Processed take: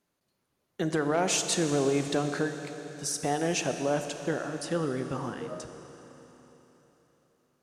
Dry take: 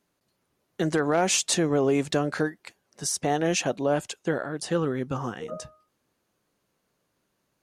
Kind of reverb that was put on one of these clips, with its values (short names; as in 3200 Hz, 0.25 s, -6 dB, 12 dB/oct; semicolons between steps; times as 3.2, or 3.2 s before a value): Schroeder reverb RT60 3.9 s, combs from 28 ms, DRR 7 dB; gain -4 dB